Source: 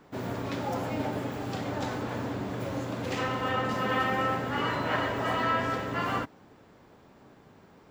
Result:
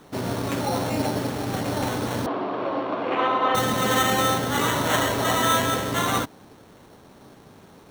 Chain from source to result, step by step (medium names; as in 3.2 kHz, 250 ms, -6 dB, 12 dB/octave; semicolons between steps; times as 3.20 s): sample-and-hold 9×; 2.26–3.55 s: cabinet simulation 320–3100 Hz, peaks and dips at 340 Hz +6 dB, 690 Hz +6 dB, 1.1 kHz +9 dB, 1.9 kHz -4 dB; trim +6.5 dB